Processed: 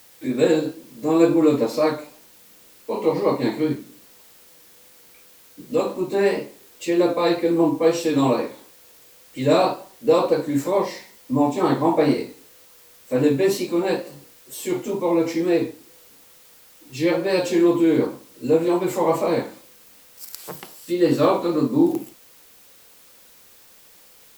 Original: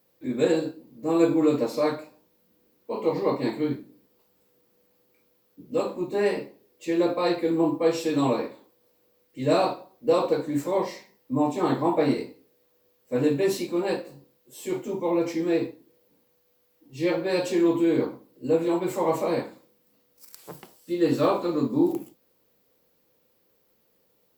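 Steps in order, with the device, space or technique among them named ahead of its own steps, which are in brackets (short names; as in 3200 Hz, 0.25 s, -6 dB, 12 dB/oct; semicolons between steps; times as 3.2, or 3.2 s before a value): noise-reduction cassette on a plain deck (mismatched tape noise reduction encoder only; wow and flutter; white noise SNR 30 dB); gain +4.5 dB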